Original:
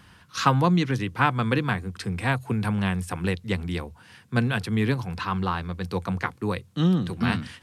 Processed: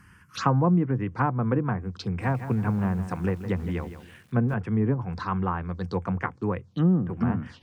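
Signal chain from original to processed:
treble cut that deepens with the level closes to 920 Hz, closed at −19.5 dBFS
phaser swept by the level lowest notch 590 Hz, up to 4,100 Hz, full sweep at −26 dBFS
0:02.03–0:04.54: feedback echo at a low word length 162 ms, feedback 35%, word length 8 bits, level −11 dB

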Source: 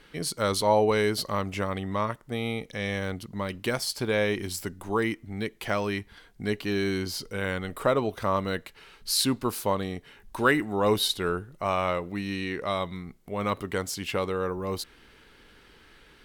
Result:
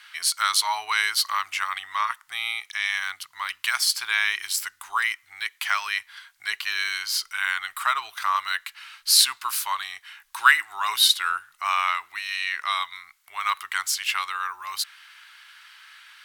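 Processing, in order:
inverse Chebyshev high-pass filter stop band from 560 Hz, stop band 40 dB
level +9 dB

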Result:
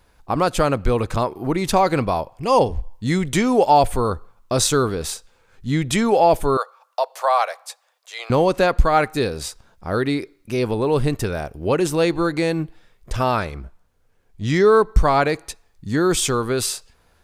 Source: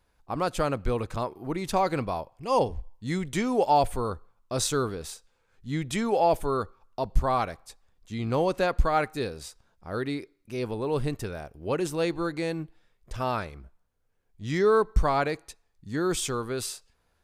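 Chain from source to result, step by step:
0:06.57–0:08.30: Butterworth high-pass 520 Hz 48 dB per octave
0:13.50–0:14.60: high-shelf EQ 11,000 Hz −5 dB
in parallel at +1 dB: downward compressor, threshold −32 dBFS, peak gain reduction 16 dB
on the sum: level +5.5 dB

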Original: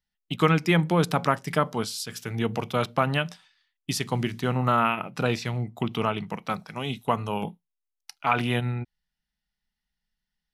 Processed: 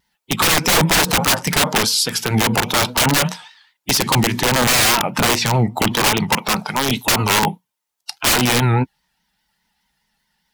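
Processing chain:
spectral magnitudes quantised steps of 15 dB
high-pass filter 160 Hz 6 dB per octave
parametric band 900 Hz +11.5 dB 0.23 octaves
wrap-around overflow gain 21.5 dB
pitch vibrato 4.9 Hz 84 cents
boost into a limiter +25 dB
level −6.5 dB

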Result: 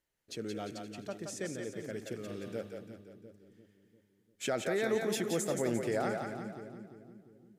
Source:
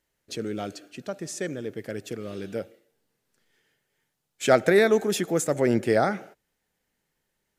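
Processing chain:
brickwall limiter −15 dBFS, peak gain reduction 8.5 dB
on a send: echo with a time of its own for lows and highs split 370 Hz, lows 347 ms, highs 174 ms, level −5 dB
on the sum: level −8 dB

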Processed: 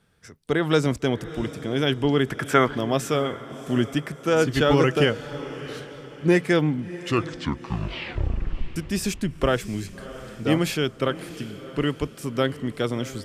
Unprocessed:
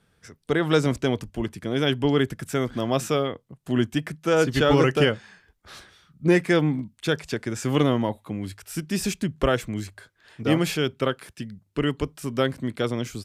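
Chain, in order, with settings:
0:02.30–0:02.75: parametric band 1,200 Hz +14.5 dB 2.4 octaves
0:06.71: tape stop 2.05 s
feedback delay with all-pass diffusion 673 ms, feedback 42%, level −15 dB

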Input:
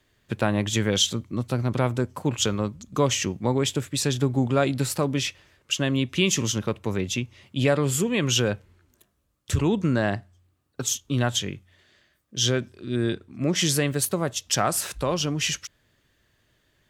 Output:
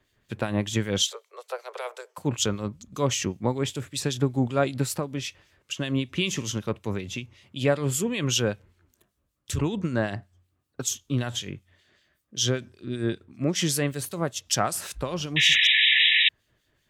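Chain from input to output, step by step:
0:01.02–0:02.18: Butterworth high-pass 420 Hz 96 dB per octave
0:04.84–0:05.77: downward compressor 2.5 to 1, threshold −26 dBFS, peak gain reduction 5.5 dB
0:15.36–0:16.29: sound drawn into the spectrogram noise 1,700–3,900 Hz −16 dBFS
two-band tremolo in antiphase 5.2 Hz, depth 70%, crossover 2,400 Hz

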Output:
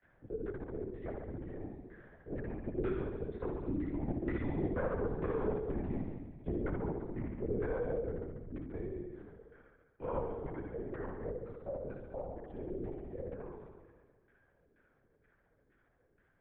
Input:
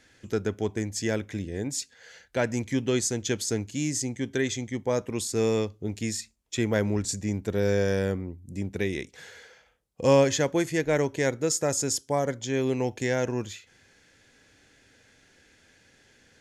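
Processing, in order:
source passing by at 0:05.11, 9 m/s, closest 3.1 metres
downward compressor 5 to 1, threshold −36 dBFS, peak gain reduction 12.5 dB
granular cloud, spray 34 ms, pitch spread up and down by 0 semitones
hard clipping −36.5 dBFS, distortion −14 dB
auto-filter low-pass saw down 2.1 Hz 300–1,700 Hz
on a send: flutter between parallel walls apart 11.6 metres, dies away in 1.2 s
on the sum: linear-prediction vocoder at 8 kHz whisper
multiband upward and downward compressor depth 40%
level +4.5 dB

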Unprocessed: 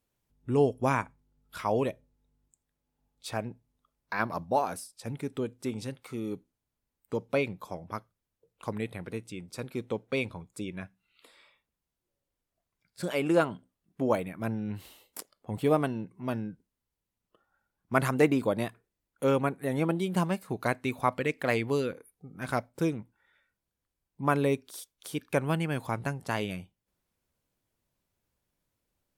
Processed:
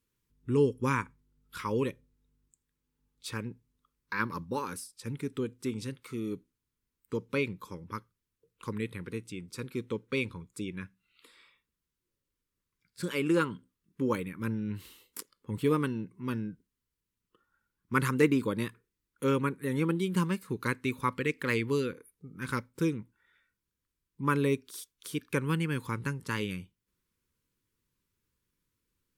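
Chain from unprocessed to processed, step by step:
Butterworth band-reject 690 Hz, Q 1.4

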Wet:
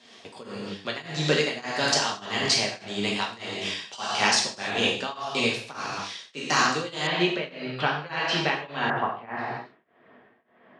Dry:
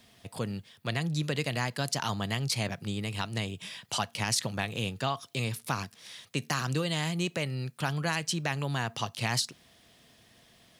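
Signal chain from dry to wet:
high-pass filter 270 Hz 12 dB per octave
reverb whose tail is shaped and stops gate 330 ms falling, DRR −4 dB
shaped tremolo triangle 1.7 Hz, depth 95%
low-pass filter 6,900 Hz 24 dB per octave, from 0:07.07 3,900 Hz, from 0:08.90 1,800 Hz
level +7.5 dB

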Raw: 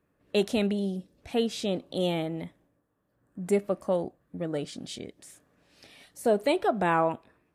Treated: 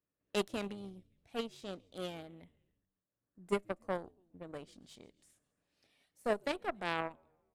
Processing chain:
echo with shifted repeats 138 ms, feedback 57%, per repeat −89 Hz, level −21 dB
speech leveller within 3 dB 2 s
harmonic generator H 3 −11 dB, 4 −27 dB, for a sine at −13 dBFS
level −5 dB

